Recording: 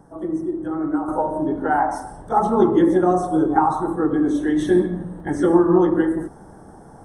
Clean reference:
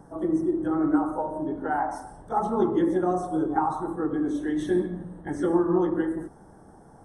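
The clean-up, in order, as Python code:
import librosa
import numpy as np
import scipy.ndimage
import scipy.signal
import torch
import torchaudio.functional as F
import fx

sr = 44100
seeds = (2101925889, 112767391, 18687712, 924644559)

y = fx.fix_interpolate(x, sr, at_s=(5.2,), length_ms=1.4)
y = fx.fix_level(y, sr, at_s=1.08, step_db=-7.5)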